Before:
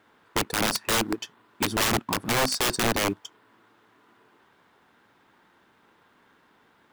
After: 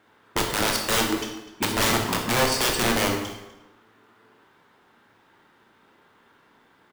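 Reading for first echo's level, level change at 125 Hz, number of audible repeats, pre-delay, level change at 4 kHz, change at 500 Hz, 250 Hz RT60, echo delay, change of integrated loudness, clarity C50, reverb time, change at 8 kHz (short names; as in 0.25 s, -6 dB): -18.5 dB, +2.5 dB, 1, 19 ms, +2.5 dB, +3.0 dB, 1.0 s, 0.249 s, +2.0 dB, 4.5 dB, 1.0 s, +2.0 dB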